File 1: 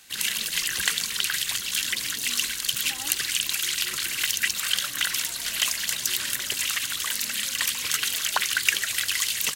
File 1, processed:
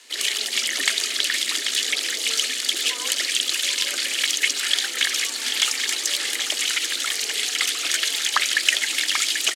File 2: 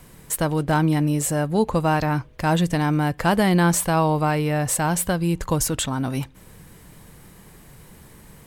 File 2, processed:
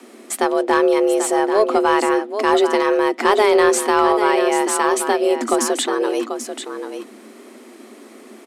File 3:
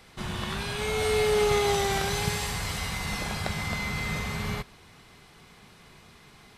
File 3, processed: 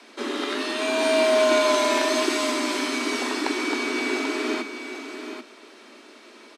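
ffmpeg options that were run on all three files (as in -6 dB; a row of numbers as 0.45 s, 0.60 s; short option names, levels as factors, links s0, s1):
-filter_complex "[0:a]lowpass=8000,afreqshift=210,asplit=2[s0][s1];[s1]aecho=0:1:788:0.355[s2];[s0][s2]amix=inputs=2:normalize=0,acontrast=38,volume=0.891"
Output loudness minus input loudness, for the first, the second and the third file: +3.5 LU, +4.5 LU, +5.0 LU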